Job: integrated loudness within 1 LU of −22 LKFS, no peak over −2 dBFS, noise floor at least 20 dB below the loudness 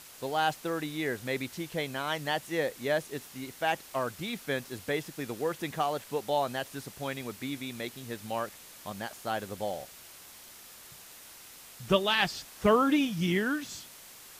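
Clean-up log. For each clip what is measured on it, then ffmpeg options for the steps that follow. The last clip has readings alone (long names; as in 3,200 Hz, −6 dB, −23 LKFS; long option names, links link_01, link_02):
background noise floor −51 dBFS; target noise floor −52 dBFS; integrated loudness −31.5 LKFS; sample peak −11.5 dBFS; target loudness −22.0 LKFS
→ -af "afftdn=noise_reduction=6:noise_floor=-51"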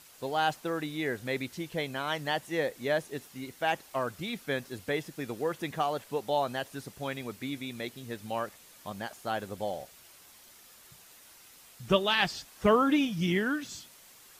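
background noise floor −55 dBFS; integrated loudness −32.0 LKFS; sample peak −11.0 dBFS; target loudness −22.0 LKFS
→ -af "volume=10dB,alimiter=limit=-2dB:level=0:latency=1"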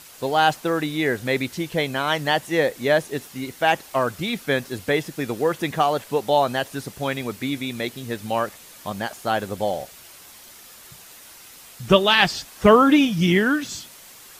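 integrated loudness −22.0 LKFS; sample peak −2.0 dBFS; background noise floor −45 dBFS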